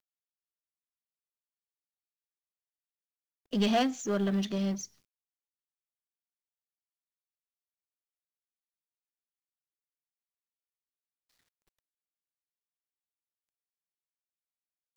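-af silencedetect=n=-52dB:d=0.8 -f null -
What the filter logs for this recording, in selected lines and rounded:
silence_start: 0.00
silence_end: 3.53 | silence_duration: 3.53
silence_start: 4.86
silence_end: 14.96 | silence_duration: 10.10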